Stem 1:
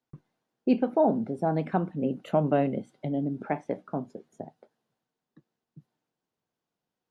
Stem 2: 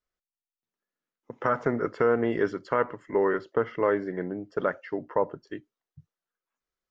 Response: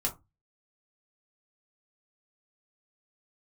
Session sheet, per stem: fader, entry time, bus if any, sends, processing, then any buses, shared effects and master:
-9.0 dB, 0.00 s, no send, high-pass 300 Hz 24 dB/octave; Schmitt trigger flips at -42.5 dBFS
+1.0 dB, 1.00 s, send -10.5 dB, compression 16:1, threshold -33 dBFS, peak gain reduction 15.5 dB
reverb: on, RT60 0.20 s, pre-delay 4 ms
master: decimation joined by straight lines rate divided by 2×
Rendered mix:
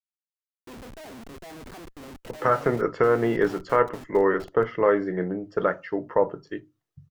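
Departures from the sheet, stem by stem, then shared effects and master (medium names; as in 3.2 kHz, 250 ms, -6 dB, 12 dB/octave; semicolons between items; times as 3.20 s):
stem 2: missing compression 16:1, threshold -33 dBFS, peak gain reduction 15.5 dB; master: missing decimation joined by straight lines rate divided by 2×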